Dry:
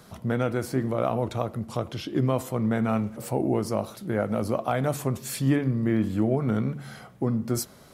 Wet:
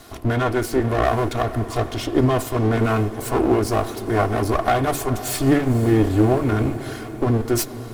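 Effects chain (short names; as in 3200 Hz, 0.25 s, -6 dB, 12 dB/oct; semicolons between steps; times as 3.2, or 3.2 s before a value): minimum comb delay 2.8 ms; diffused feedback echo 0.507 s, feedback 59%, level -15 dB; gain +9 dB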